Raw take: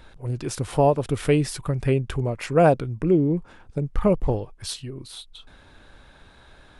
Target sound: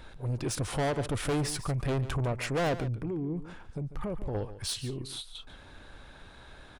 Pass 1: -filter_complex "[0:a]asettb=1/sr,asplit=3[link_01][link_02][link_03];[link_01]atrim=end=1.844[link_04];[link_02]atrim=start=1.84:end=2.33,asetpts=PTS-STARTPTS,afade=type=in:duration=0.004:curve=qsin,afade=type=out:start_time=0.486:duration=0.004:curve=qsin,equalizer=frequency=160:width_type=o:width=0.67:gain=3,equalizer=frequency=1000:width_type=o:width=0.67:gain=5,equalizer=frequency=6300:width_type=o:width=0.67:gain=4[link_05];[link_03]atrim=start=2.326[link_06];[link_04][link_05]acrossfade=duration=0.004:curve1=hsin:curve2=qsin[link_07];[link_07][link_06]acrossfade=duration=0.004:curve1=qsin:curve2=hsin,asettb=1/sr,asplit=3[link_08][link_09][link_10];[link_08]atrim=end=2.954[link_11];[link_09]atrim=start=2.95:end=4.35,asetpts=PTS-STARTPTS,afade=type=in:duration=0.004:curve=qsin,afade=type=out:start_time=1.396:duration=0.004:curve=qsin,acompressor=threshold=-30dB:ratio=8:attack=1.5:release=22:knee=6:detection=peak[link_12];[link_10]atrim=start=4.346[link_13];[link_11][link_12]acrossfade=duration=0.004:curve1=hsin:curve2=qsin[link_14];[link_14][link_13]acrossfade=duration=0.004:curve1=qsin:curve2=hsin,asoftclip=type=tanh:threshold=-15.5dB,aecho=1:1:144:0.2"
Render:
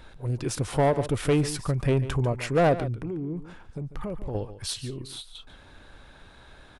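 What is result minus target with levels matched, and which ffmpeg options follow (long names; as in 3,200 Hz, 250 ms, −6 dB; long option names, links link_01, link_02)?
soft clipping: distortion −8 dB
-filter_complex "[0:a]asettb=1/sr,asplit=3[link_01][link_02][link_03];[link_01]atrim=end=1.844[link_04];[link_02]atrim=start=1.84:end=2.33,asetpts=PTS-STARTPTS,afade=type=in:duration=0.004:curve=qsin,afade=type=out:start_time=0.486:duration=0.004:curve=qsin,equalizer=frequency=160:width_type=o:width=0.67:gain=3,equalizer=frequency=1000:width_type=o:width=0.67:gain=5,equalizer=frequency=6300:width_type=o:width=0.67:gain=4[link_05];[link_03]atrim=start=2.326[link_06];[link_04][link_05]acrossfade=duration=0.004:curve1=hsin:curve2=qsin[link_07];[link_07][link_06]acrossfade=duration=0.004:curve1=qsin:curve2=hsin,asettb=1/sr,asplit=3[link_08][link_09][link_10];[link_08]atrim=end=2.954[link_11];[link_09]atrim=start=2.95:end=4.35,asetpts=PTS-STARTPTS,afade=type=in:duration=0.004:curve=qsin,afade=type=out:start_time=1.396:duration=0.004:curve=qsin,acompressor=threshold=-30dB:ratio=8:attack=1.5:release=22:knee=6:detection=peak[link_12];[link_10]atrim=start=4.346[link_13];[link_11][link_12]acrossfade=duration=0.004:curve1=hsin:curve2=qsin[link_14];[link_14][link_13]acrossfade=duration=0.004:curve1=qsin:curve2=hsin,asoftclip=type=tanh:threshold=-26dB,aecho=1:1:144:0.2"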